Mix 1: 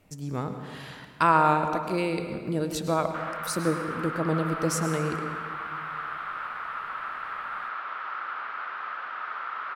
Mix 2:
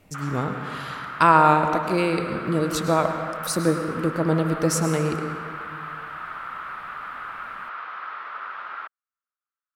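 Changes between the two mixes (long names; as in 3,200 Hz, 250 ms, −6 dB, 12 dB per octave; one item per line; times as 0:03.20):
speech +5.0 dB
background: entry −3.00 s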